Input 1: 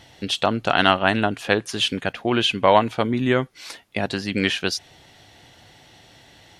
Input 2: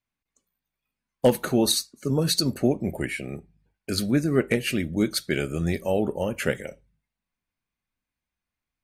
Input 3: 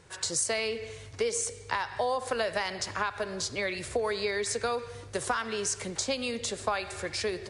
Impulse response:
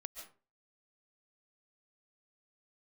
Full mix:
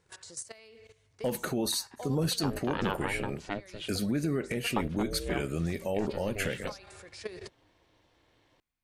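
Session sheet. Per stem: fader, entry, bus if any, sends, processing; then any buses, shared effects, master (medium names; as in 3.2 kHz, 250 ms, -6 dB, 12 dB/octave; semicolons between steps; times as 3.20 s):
-11.5 dB, 2.00 s, muted 3.91–4.76 s, no bus, no send, treble shelf 2.3 kHz -9.5 dB; ring modulator 200 Hz
-2.5 dB, 0.00 s, bus A, no send, none
-1.0 dB, 0.00 s, bus A, no send, level held to a coarse grid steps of 14 dB; auto duck -11 dB, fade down 0.55 s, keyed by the second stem
bus A: 0.0 dB, peak limiter -21 dBFS, peak gain reduction 11.5 dB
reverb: none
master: none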